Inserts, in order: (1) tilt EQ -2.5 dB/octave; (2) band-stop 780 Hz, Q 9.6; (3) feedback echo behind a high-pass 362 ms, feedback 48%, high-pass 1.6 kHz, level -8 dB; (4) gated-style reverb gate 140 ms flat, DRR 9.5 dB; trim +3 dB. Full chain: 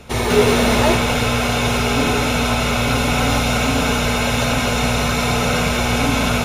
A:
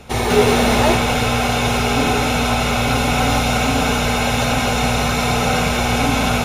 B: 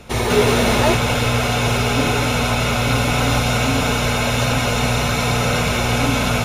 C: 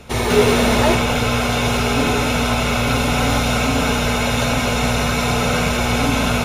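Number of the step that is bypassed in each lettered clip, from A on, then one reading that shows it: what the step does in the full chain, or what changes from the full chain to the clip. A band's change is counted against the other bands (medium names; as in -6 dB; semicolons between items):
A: 2, 1 kHz band +2.5 dB; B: 4, echo-to-direct -6.5 dB to -10.0 dB; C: 3, echo-to-direct -6.5 dB to -9.5 dB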